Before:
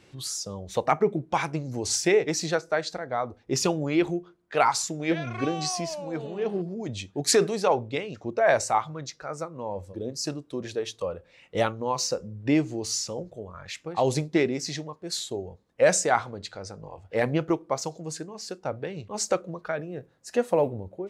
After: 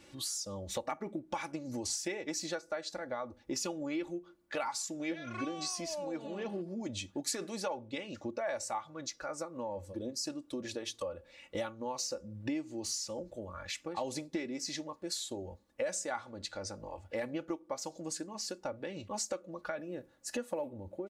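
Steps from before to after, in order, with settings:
high-shelf EQ 5,800 Hz +6 dB
comb filter 3.5 ms, depth 69%
downward compressor 4 to 1, threshold −33 dBFS, peak gain reduction 18 dB
level −3 dB

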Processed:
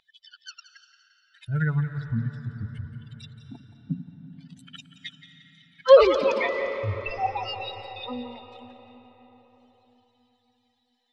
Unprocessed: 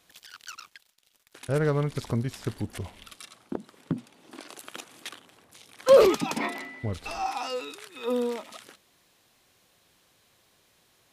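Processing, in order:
spectral dynamics exaggerated over time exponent 3
low-pass filter 4,200 Hz 24 dB per octave
parametric band 320 Hz −9 dB 1.2 octaves
mains-hum notches 60/120/180/240 Hz
in parallel at +1 dB: upward compression, threshold −36 dBFS
on the sum: echo with a time of its own for lows and highs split 340 Hz, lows 84 ms, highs 174 ms, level −13 dB
on a send at −10 dB: convolution reverb RT60 4.7 s, pre-delay 176 ms
on the sum: level +2.5 dB

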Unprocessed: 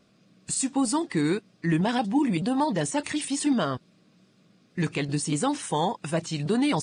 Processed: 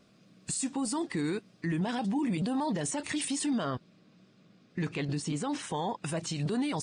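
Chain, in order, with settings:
brickwall limiter −24 dBFS, peak gain reduction 9.5 dB
0:03.64–0:06.04: high-frequency loss of the air 66 metres

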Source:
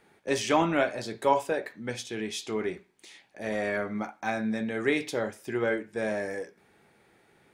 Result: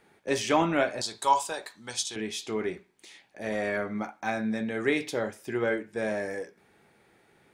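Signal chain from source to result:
0:01.01–0:02.16: graphic EQ with 10 bands 125 Hz −8 dB, 250 Hz −8 dB, 500 Hz −9 dB, 1,000 Hz +7 dB, 2,000 Hz −8 dB, 4,000 Hz +8 dB, 8,000 Hz +11 dB

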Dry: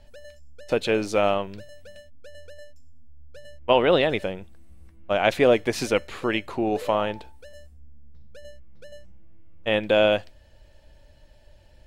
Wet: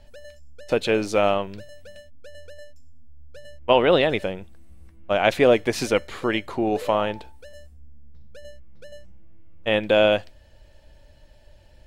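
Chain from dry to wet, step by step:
0:05.92–0:06.67: notch filter 2,600 Hz, Q 12
level +1.5 dB

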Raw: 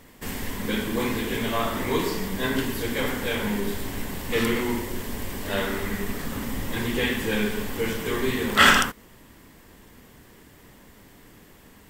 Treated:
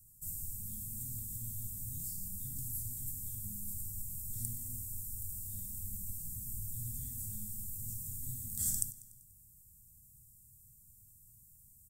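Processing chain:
elliptic band-stop filter 120–8,300 Hz, stop band 50 dB
low-shelf EQ 160 Hz −12 dB
repeating echo 97 ms, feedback 58%, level −18 dB

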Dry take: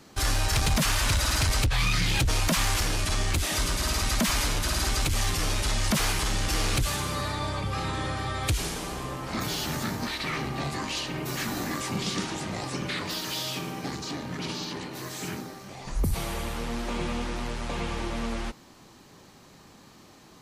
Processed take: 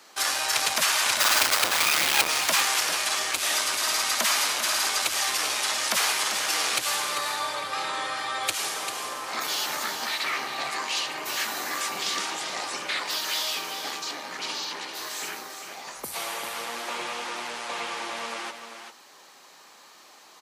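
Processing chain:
0:01.20–0:02.28: each half-wave held at its own peak
high-pass filter 700 Hz 12 dB per octave
single-tap delay 394 ms −8 dB
level +4 dB

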